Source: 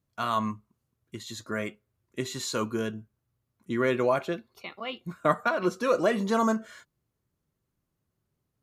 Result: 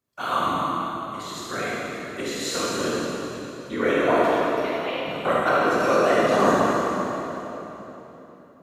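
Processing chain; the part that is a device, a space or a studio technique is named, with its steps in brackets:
whispering ghost (random phases in short frames; high-pass filter 330 Hz 6 dB per octave; convolution reverb RT60 3.6 s, pre-delay 19 ms, DRR −7 dB)

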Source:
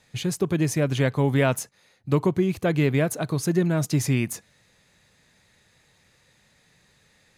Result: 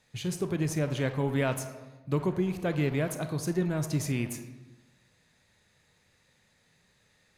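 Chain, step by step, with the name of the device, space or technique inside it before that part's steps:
saturated reverb return (on a send at −4.5 dB: convolution reverb RT60 1.0 s, pre-delay 25 ms + soft clipping −24 dBFS, distortion −9 dB)
on the sum: level −7 dB

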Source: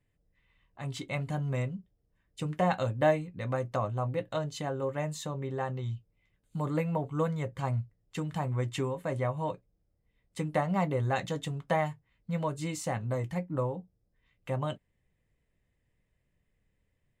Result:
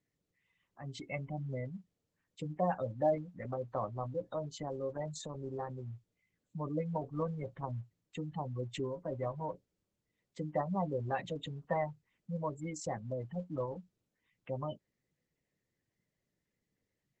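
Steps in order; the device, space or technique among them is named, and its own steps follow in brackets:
noise-suppressed video call (high-pass filter 150 Hz 12 dB per octave; gate on every frequency bin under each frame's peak −15 dB strong; level −4 dB; Opus 12 kbit/s 48,000 Hz)

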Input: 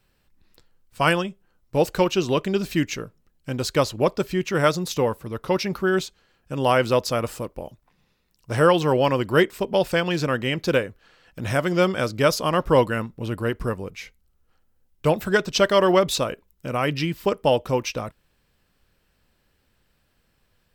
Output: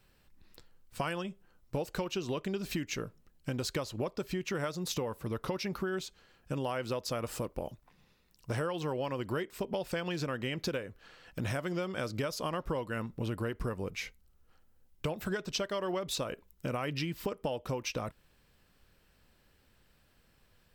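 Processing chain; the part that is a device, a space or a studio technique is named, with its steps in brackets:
serial compression, peaks first (downward compressor, threshold −27 dBFS, peak gain reduction 14.5 dB; downward compressor 2 to 1, threshold −34 dBFS, peak gain reduction 6 dB)

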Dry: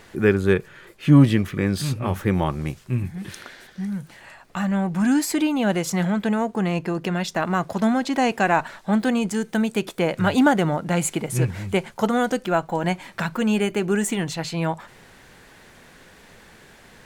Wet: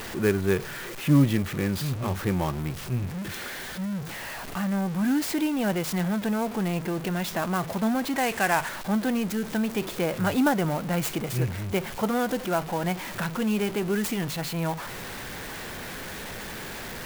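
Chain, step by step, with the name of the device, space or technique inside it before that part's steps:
early CD player with a faulty converter (converter with a step at zero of −25 dBFS; converter with an unsteady clock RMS 0.03 ms)
0:08.16–0:08.69: octave-band graphic EQ 250/2,000/8,000 Hz −5/+5/+5 dB
level −6.5 dB

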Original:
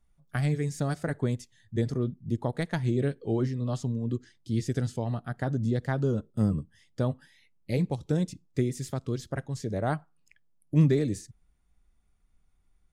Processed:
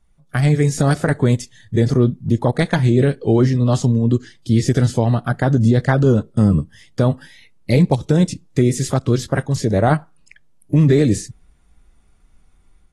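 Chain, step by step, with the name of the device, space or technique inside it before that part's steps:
low-bitrate web radio (automatic gain control gain up to 6 dB; brickwall limiter −14 dBFS, peak gain reduction 8 dB; level +8.5 dB; AAC 32 kbit/s 32,000 Hz)

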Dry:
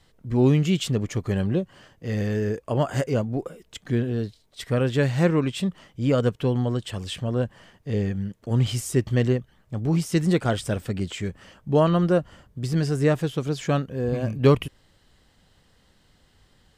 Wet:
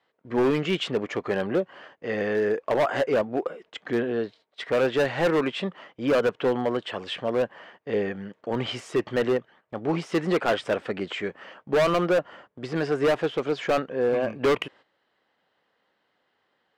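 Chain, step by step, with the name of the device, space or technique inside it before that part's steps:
walkie-talkie (band-pass filter 450–2,300 Hz; hard clipping −25.5 dBFS, distortion −7 dB; noise gate −58 dBFS, range −12 dB)
level +8 dB

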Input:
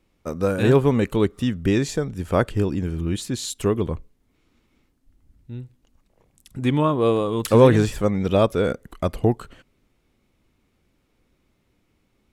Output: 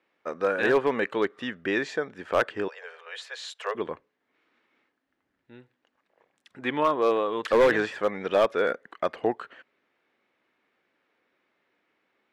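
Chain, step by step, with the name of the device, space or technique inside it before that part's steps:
megaphone (band-pass filter 480–3,100 Hz; parametric band 1,700 Hz +7.5 dB 0.44 octaves; hard clipping −14 dBFS, distortion −14 dB)
0:02.68–0:03.75: Butterworth high-pass 450 Hz 96 dB per octave

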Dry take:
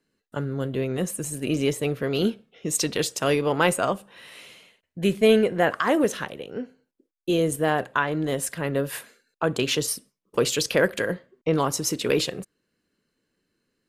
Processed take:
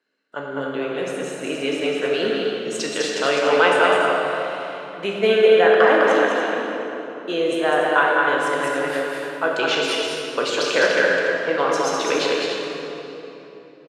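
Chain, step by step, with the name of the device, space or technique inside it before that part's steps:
station announcement (band-pass filter 450–4,200 Hz; parametric band 1,500 Hz +5 dB 0.23 octaves; loudspeakers that aren't time-aligned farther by 70 metres −4 dB, 99 metres −10 dB; convolution reverb RT60 3.5 s, pre-delay 8 ms, DRR −1.5 dB)
0:08.63–0:09.59: high-shelf EQ 8,900 Hz +5.5 dB
level +2 dB

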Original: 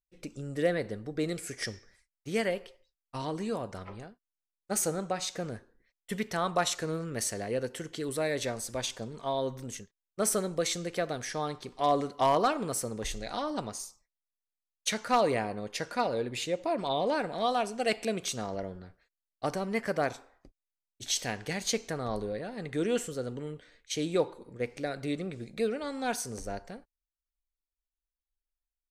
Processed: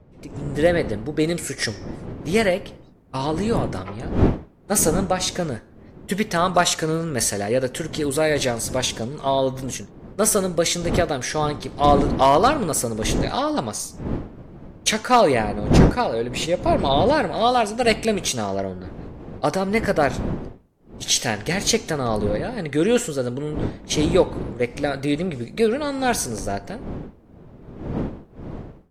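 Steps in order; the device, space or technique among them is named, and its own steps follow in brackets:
smartphone video outdoors (wind on the microphone 290 Hz −38 dBFS; automatic gain control gain up to 11 dB; AAC 64 kbit/s 48,000 Hz)

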